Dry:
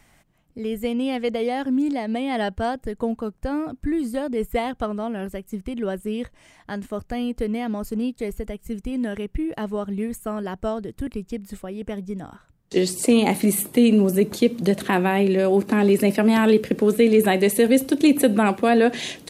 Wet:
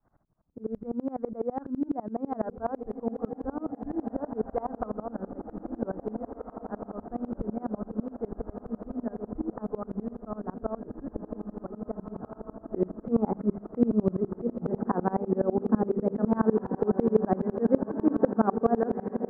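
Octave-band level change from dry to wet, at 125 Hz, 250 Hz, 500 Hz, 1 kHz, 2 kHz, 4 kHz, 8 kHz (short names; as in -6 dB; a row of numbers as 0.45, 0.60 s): -6.5 dB, -8.0 dB, -8.0 dB, -7.0 dB, -20.5 dB, under -40 dB, under -40 dB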